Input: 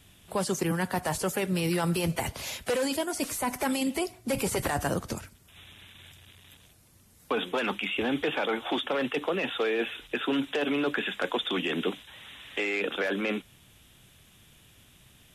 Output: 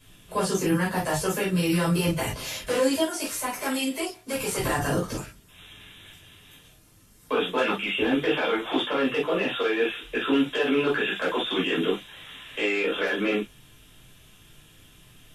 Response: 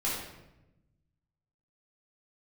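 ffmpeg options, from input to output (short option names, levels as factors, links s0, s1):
-filter_complex "[0:a]asettb=1/sr,asplit=3[s0][s1][s2];[s0]atrim=end=3.044[s3];[s1]atrim=start=3.04:end=4.57,asetpts=PTS-STARTPTS,afade=t=in:d=0.004:c=qsin,afade=t=out:st=1.526:d=0.004:c=qsin,lowshelf=f=400:g=-9.5[s4];[s2]atrim=start=4.566[s5];[s3][s4]acrossfade=d=0.004:c1=hsin:c2=qsin[s6];[s6][s5]acrossfade=d=0.004:c1=qsin:c2=hsin[s7];[1:a]atrim=start_sample=2205,atrim=end_sample=3969,asetrate=57330,aresample=44100[s8];[s7][s8]afir=irnorm=-1:irlink=0"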